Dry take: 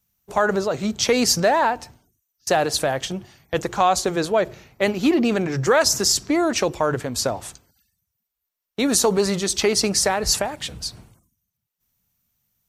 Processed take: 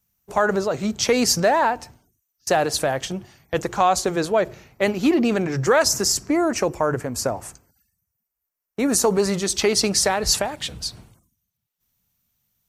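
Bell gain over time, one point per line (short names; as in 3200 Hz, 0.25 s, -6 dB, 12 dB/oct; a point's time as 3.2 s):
bell 3600 Hz 0.66 oct
5.77 s -3 dB
6.35 s -14 dB
8.87 s -14 dB
9.1 s -7.5 dB
9.82 s +2 dB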